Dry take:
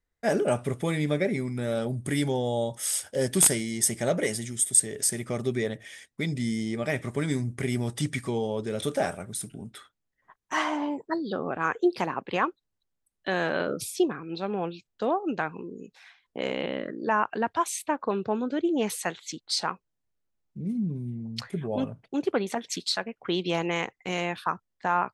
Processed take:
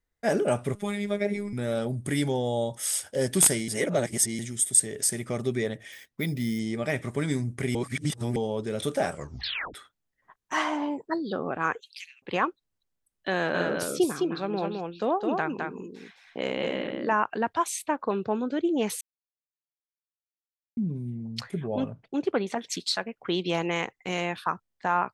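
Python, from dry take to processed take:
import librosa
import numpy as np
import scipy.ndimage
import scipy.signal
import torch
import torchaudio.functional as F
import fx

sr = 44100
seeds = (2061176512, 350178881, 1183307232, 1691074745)

y = fx.robotise(x, sr, hz=204.0, at=(0.75, 1.53))
y = fx.resample_bad(y, sr, factor=3, down='filtered', up='hold', at=(5.92, 6.59))
y = fx.steep_highpass(y, sr, hz=2300.0, slope=48, at=(11.79, 12.22), fade=0.02)
y = fx.echo_single(y, sr, ms=211, db=-4.0, at=(13.33, 17.14))
y = fx.air_absorb(y, sr, metres=54.0, at=(21.61, 22.59))
y = fx.edit(y, sr, fx.reverse_span(start_s=3.68, length_s=0.71),
    fx.reverse_span(start_s=7.75, length_s=0.61),
    fx.tape_stop(start_s=9.1, length_s=0.64),
    fx.silence(start_s=19.01, length_s=1.76), tone=tone)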